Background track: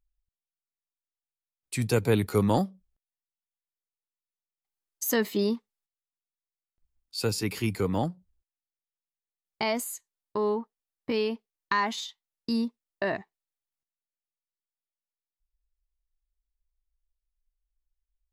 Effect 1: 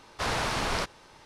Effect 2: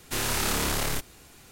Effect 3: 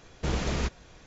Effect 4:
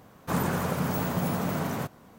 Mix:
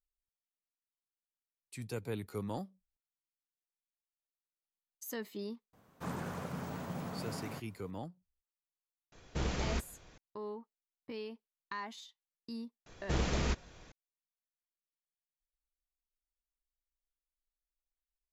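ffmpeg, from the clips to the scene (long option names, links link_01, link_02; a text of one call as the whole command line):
ffmpeg -i bed.wav -i cue0.wav -i cue1.wav -i cue2.wav -i cue3.wav -filter_complex "[3:a]asplit=2[link_01][link_02];[0:a]volume=-15.5dB[link_03];[4:a]acrossover=split=8700[link_04][link_05];[link_05]acompressor=threshold=-51dB:ratio=4:attack=1:release=60[link_06];[link_04][link_06]amix=inputs=2:normalize=0,atrim=end=2.18,asetpts=PTS-STARTPTS,volume=-12.5dB,afade=type=in:duration=0.004:curve=hsin,afade=type=out:start_time=2.176:duration=0.004:curve=hsin,adelay=252693S[link_07];[link_01]atrim=end=1.06,asetpts=PTS-STARTPTS,volume=-6dB,afade=type=in:duration=0.004:curve=hsin,afade=type=out:start_time=1.056:duration=0.004:curve=hsin,adelay=9120[link_08];[link_02]atrim=end=1.06,asetpts=PTS-STARTPTS,volume=-3.5dB,afade=type=in:duration=0.004:curve=hsin,afade=type=out:start_time=1.056:duration=0.004:curve=hsin,adelay=12860[link_09];[link_03][link_07][link_08][link_09]amix=inputs=4:normalize=0" out.wav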